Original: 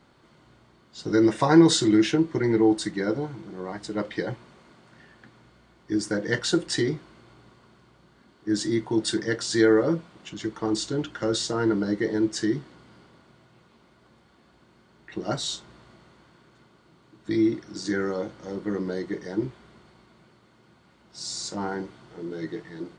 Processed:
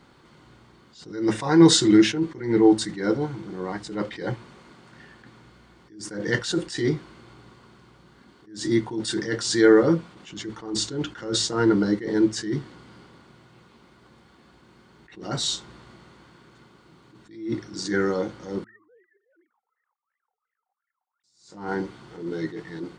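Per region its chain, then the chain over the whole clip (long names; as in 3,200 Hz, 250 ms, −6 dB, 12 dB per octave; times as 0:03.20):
0:18.64–0:21.24: three sine waves on the formant tracks + LFO wah 2.8 Hz 740–1,900 Hz, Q 17
whole clip: parametric band 630 Hz −7 dB 0.21 octaves; hum removal 109.9 Hz, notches 2; level that may rise only so fast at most 110 dB per second; level +4.5 dB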